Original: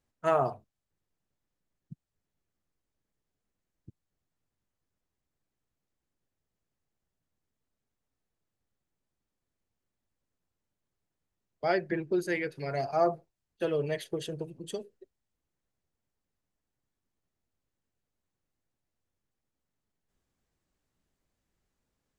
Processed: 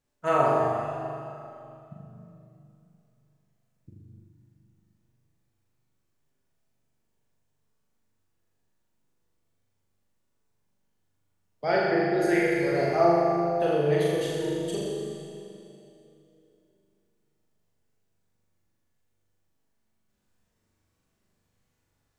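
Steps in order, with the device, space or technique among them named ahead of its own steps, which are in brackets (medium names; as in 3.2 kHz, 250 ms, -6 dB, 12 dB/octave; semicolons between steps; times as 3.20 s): tunnel (flutter echo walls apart 7 m, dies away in 1 s; reverberation RT60 2.8 s, pre-delay 3 ms, DRR -0.5 dB)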